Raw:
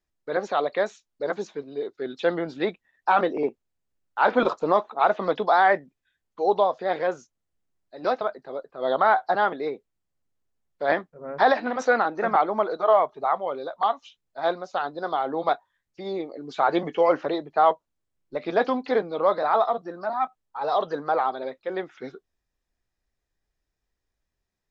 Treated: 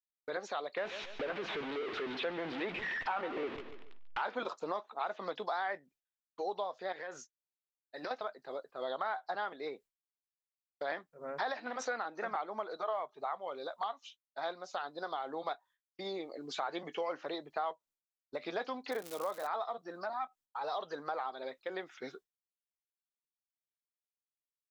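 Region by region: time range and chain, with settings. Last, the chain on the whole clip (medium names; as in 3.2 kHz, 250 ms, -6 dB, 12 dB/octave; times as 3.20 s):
0.77–4.22 s: jump at every zero crossing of -23 dBFS + low-pass 3 kHz 24 dB/octave + feedback delay 142 ms, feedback 29%, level -14 dB
6.92–8.11 s: peaking EQ 1.8 kHz +10 dB 0.26 oct + compression, threshold -30 dBFS
18.90–19.46 s: low-pass 3.3 kHz + crackle 230 per s -29 dBFS
whole clip: expander -43 dBFS; tilt EQ +2.5 dB/octave; compression 3:1, threshold -34 dBFS; trim -3.5 dB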